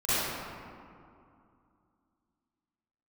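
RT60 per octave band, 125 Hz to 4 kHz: 2.8 s, 3.1 s, 2.4 s, 2.6 s, 1.8 s, 1.1 s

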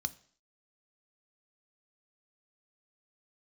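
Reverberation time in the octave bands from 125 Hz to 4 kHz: 0.45 s, 0.55 s, 0.55 s, 0.50 s, 0.55 s, 0.60 s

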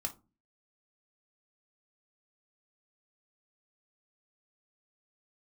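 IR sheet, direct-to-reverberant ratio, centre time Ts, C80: 3.5 dB, 8 ms, 25.0 dB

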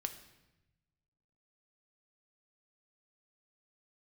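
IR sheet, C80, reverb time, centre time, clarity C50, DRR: 13.5 dB, 1.0 s, 11 ms, 11.5 dB, 6.5 dB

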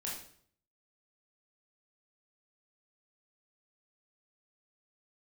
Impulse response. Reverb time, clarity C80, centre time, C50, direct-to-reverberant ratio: 0.60 s, 8.0 dB, 43 ms, 3.5 dB, -5.0 dB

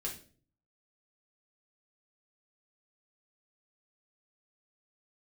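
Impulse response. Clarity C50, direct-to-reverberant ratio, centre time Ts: 9.0 dB, -3.0 dB, 21 ms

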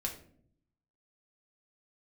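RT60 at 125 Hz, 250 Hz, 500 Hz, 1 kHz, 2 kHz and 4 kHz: 1.1 s, 0.95 s, 0.70 s, 0.50 s, 0.40 s, 0.35 s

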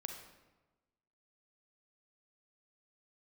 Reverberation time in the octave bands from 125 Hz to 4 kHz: 1.3 s, 1.3 s, 1.2 s, 1.1 s, 0.95 s, 0.75 s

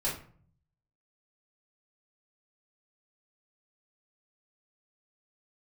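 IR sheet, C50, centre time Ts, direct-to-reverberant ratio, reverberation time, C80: 6.5 dB, 32 ms, -7.5 dB, 0.50 s, 11.5 dB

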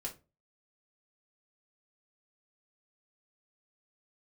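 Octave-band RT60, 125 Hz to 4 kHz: 0.45 s, 0.35 s, 0.35 s, 0.25 s, 0.20 s, 0.20 s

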